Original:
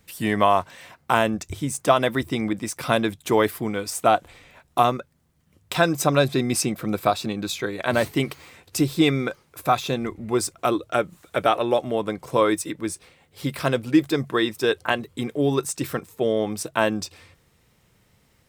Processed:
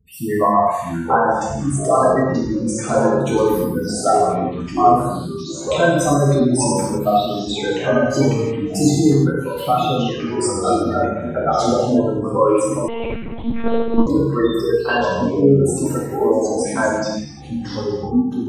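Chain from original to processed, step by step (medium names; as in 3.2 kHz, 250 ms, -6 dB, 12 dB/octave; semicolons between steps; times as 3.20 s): spectral gate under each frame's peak -10 dB strong; ever faster or slower copies 563 ms, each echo -4 st, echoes 3, each echo -6 dB; gated-style reverb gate 380 ms falling, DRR -6.5 dB; 12.88–14.07 s: monotone LPC vocoder at 8 kHz 230 Hz; trim -1 dB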